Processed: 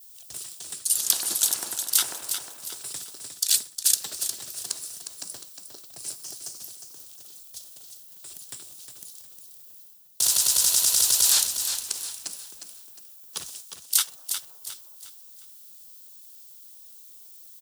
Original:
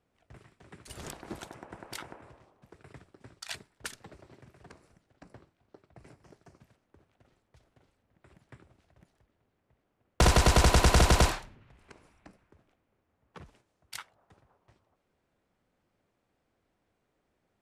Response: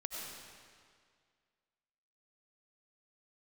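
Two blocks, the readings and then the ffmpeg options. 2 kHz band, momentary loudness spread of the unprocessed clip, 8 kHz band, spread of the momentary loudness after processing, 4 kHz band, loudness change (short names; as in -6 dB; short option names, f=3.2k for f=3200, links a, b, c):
-5.0 dB, 22 LU, +16.5 dB, 23 LU, +9.5 dB, +2.0 dB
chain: -filter_complex "[0:a]aemphasis=mode=production:type=bsi,asplit=2[a][b];[b]aeval=exprs='(mod(15.8*val(0)+1,2)-1)/15.8':c=same,volume=-9.5dB[c];[a][c]amix=inputs=2:normalize=0,aexciter=amount=11.5:drive=5.3:freq=3.2k,areverse,acompressor=threshold=-20dB:ratio=10,areverse,adynamicequalizer=threshold=0.00398:dfrequency=1700:dqfactor=0.99:tfrequency=1700:tqfactor=0.99:attack=5:release=100:ratio=0.375:range=3.5:mode=boostabove:tftype=bell,aecho=1:1:358|716|1074|1432:0.398|0.147|0.0545|0.0202,volume=1dB"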